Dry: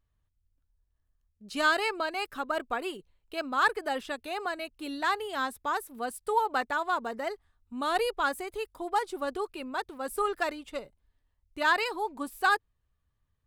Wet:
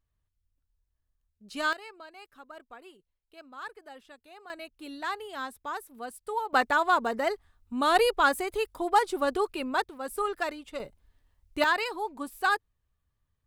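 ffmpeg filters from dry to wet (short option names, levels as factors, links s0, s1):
-af "asetnsamples=n=441:p=0,asendcmd='1.73 volume volume -16dB;4.5 volume volume -5dB;6.53 volume volume 5.5dB;9.84 volume volume -1dB;10.8 volume volume 7dB;11.64 volume volume -1dB',volume=0.668"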